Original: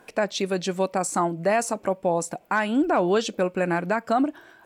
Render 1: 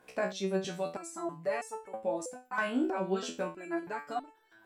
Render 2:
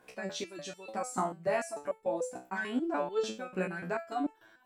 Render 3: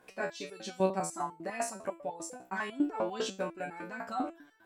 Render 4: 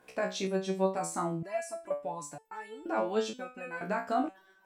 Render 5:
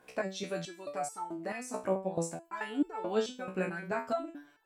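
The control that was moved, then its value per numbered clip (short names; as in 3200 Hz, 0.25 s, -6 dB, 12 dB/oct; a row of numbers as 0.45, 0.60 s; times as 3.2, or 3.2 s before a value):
stepped resonator, rate: 3.1, 6.8, 10, 2.1, 4.6 Hz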